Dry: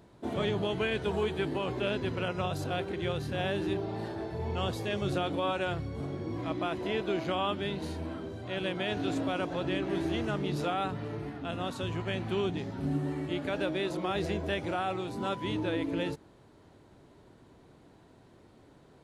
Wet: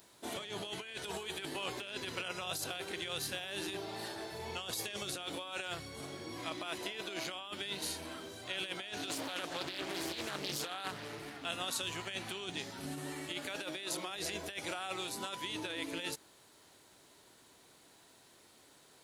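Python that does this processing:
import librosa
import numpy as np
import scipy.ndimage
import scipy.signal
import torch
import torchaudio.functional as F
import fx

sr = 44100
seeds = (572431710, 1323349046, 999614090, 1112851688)

y = fx.doppler_dist(x, sr, depth_ms=0.47, at=(9.1, 11.45))
y = F.preemphasis(torch.from_numpy(y), 0.9).numpy()
y = fx.over_compress(y, sr, threshold_db=-49.0, ratio=-0.5)
y = fx.low_shelf(y, sr, hz=230.0, db=-11.0)
y = y * librosa.db_to_amplitude(11.5)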